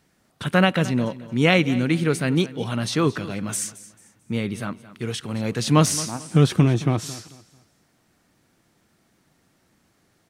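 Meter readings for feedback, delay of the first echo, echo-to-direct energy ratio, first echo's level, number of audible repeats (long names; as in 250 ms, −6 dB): 32%, 221 ms, −16.5 dB, −17.0 dB, 2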